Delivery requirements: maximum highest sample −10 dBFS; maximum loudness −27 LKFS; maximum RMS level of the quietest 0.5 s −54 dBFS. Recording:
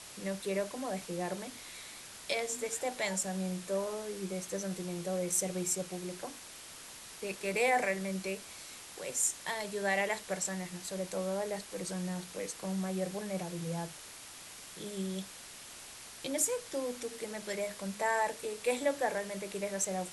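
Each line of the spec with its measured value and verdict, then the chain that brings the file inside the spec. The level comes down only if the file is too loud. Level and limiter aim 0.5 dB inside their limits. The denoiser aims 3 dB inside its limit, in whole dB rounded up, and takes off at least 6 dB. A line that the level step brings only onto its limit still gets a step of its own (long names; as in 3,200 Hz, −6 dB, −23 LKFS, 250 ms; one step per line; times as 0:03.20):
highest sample −15.0 dBFS: in spec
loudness −35.5 LKFS: in spec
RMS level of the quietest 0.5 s −49 dBFS: out of spec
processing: broadband denoise 8 dB, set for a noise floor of −49 dBFS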